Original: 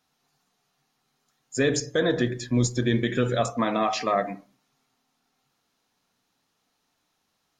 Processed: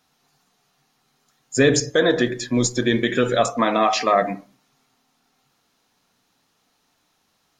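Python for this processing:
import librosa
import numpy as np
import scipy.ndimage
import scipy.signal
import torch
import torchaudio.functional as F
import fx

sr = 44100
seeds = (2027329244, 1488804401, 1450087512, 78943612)

y = fx.peak_eq(x, sr, hz=76.0, db=-13.5, octaves=2.1, at=(1.9, 4.22))
y = F.gain(torch.from_numpy(y), 7.0).numpy()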